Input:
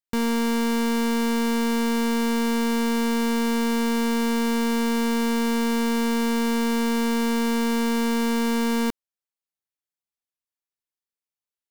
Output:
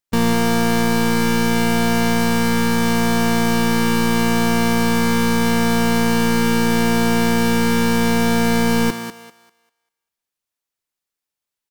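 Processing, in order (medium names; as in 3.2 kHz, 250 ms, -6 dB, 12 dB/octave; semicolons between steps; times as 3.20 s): thinning echo 197 ms, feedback 29%, high-pass 400 Hz, level -8 dB; harmony voices -12 st -11 dB, -5 st -7 dB; trim +6 dB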